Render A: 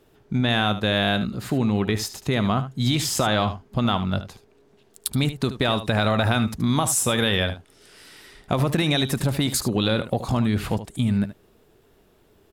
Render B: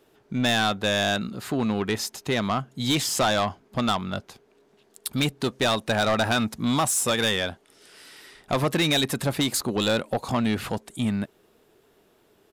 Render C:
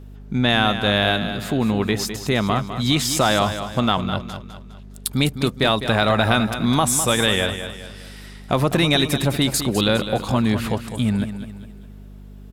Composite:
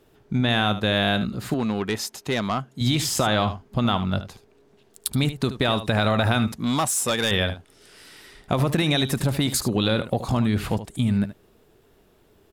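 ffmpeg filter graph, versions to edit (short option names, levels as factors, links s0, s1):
-filter_complex "[1:a]asplit=2[s0][s1];[0:a]asplit=3[s2][s3][s4];[s2]atrim=end=1.542[s5];[s0]atrim=start=1.538:end=2.812[s6];[s3]atrim=start=2.808:end=6.522[s7];[s1]atrim=start=6.518:end=7.312[s8];[s4]atrim=start=7.308[s9];[s5][s6]acrossfade=d=0.004:c1=hsin:c2=hsin[s10];[s10][s7]acrossfade=d=0.004:c1=hsin:c2=hsin[s11];[s11][s8]acrossfade=d=0.004:c1=hsin:c2=hsin[s12];[s12][s9]acrossfade=d=0.004:c1=hsin:c2=hsin"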